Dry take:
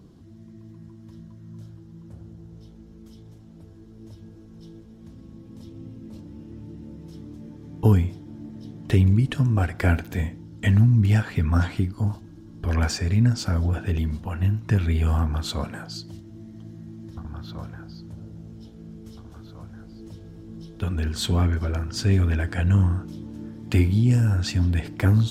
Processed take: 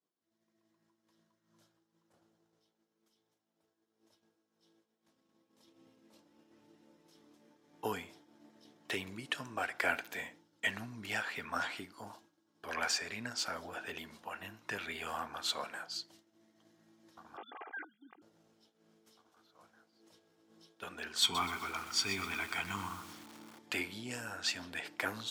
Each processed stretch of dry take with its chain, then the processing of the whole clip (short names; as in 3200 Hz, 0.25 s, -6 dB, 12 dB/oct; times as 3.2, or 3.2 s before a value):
17.37–18.22 sine-wave speech + comb 2.5 ms, depth 74%
21.22–23.59 comb 0.9 ms, depth 92% + lo-fi delay 0.125 s, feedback 35%, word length 6-bit, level -10.5 dB
whole clip: expander -35 dBFS; HPF 660 Hz 12 dB/oct; dynamic EQ 2600 Hz, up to +3 dB, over -42 dBFS, Q 0.87; gain -4.5 dB